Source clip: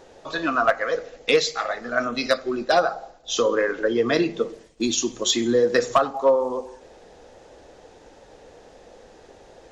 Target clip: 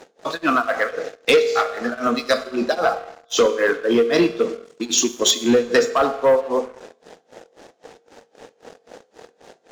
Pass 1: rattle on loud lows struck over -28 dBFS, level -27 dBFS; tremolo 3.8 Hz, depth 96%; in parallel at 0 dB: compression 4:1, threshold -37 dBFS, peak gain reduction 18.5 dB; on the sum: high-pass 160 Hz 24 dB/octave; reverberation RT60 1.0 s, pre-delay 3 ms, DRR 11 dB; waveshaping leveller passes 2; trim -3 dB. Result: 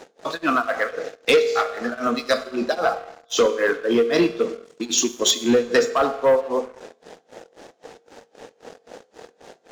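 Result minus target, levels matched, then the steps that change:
compression: peak gain reduction +7 dB
change: compression 4:1, threshold -27.5 dBFS, peak gain reduction 11.5 dB

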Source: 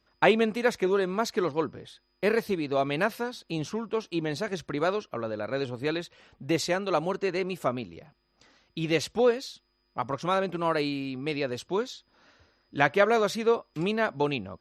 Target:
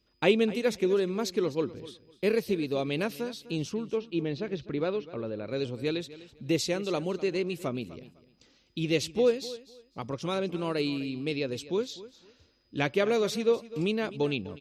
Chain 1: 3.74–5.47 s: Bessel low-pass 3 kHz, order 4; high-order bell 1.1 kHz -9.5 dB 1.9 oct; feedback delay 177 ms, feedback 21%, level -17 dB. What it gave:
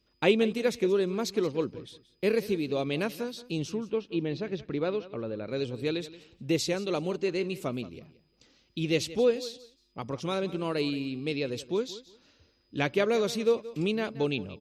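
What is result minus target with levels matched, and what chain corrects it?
echo 75 ms early
3.74–5.47 s: Bessel low-pass 3 kHz, order 4; high-order bell 1.1 kHz -9.5 dB 1.9 oct; feedback delay 252 ms, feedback 21%, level -17 dB

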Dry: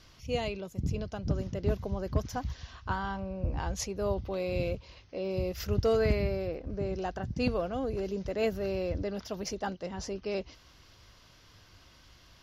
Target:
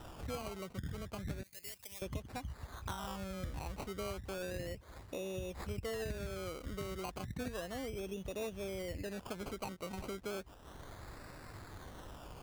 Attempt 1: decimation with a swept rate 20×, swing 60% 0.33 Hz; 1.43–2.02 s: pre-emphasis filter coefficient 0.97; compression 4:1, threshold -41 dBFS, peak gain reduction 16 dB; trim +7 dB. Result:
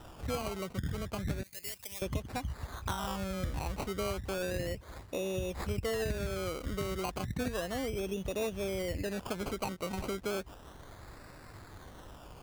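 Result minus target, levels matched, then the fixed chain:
compression: peak gain reduction -6.5 dB
decimation with a swept rate 20×, swing 60% 0.33 Hz; 1.43–2.02 s: pre-emphasis filter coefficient 0.97; compression 4:1, threshold -49.5 dBFS, peak gain reduction 22 dB; trim +7 dB

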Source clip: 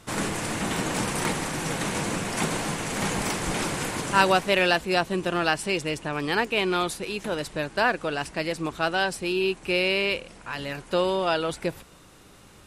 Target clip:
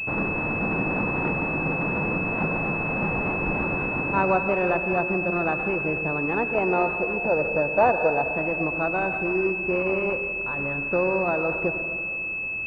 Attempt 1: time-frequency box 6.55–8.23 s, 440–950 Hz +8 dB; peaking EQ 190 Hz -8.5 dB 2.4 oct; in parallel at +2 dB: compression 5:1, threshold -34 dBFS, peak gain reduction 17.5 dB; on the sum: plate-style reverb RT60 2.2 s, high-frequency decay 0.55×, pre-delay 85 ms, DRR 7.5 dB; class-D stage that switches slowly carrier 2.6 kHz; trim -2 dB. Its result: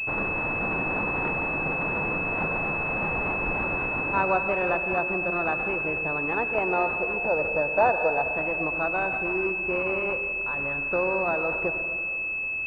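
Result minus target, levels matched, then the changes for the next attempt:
250 Hz band -4.5 dB
remove: peaking EQ 190 Hz -8.5 dB 2.4 oct

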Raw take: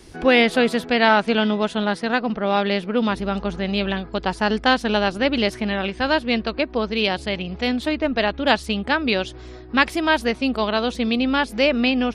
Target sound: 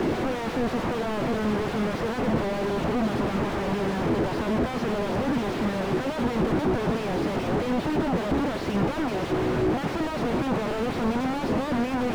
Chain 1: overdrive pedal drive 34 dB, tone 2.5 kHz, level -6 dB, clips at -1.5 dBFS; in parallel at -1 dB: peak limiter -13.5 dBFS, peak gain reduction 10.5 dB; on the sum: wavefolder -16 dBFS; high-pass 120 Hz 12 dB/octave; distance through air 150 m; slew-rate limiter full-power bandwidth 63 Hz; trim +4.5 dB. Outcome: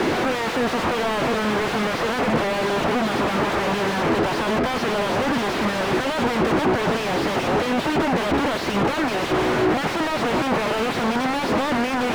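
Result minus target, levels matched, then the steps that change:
slew-rate limiter: distortion -8 dB
change: slew-rate limiter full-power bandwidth 21.5 Hz

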